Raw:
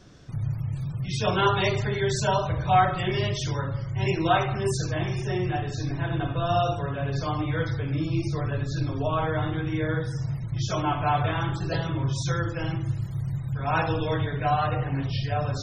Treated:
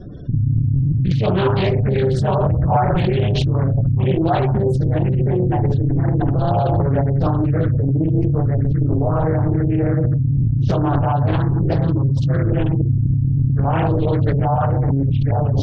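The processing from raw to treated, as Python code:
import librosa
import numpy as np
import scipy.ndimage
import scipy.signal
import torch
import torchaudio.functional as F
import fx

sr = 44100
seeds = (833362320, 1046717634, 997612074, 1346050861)

p1 = fx.spec_gate(x, sr, threshold_db=-20, keep='strong')
p2 = fx.peak_eq(p1, sr, hz=1400.0, db=-13.0, octaves=1.9)
p3 = fx.over_compress(p2, sr, threshold_db=-33.0, ratio=-0.5)
p4 = p2 + (p3 * librosa.db_to_amplitude(1.0))
p5 = scipy.signal.lfilter(np.full(7, 1.0 / 7), 1.0, p4)
p6 = fx.doppler_dist(p5, sr, depth_ms=0.54)
y = p6 * librosa.db_to_amplitude(8.5)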